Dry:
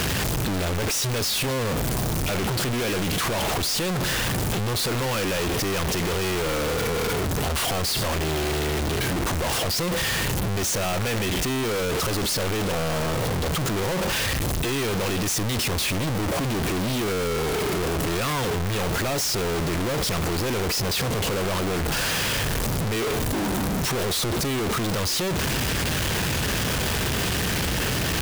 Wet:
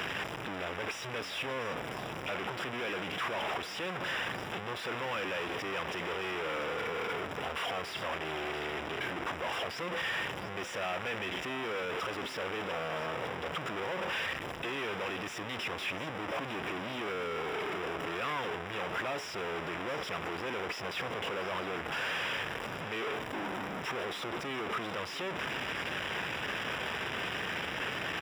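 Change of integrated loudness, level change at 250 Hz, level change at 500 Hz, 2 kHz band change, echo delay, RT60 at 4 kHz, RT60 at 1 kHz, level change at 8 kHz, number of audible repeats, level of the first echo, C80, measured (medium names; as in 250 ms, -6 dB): -11.0 dB, -15.0 dB, -10.5 dB, -6.0 dB, 697 ms, no reverb, no reverb, -23.5 dB, 1, -13.5 dB, no reverb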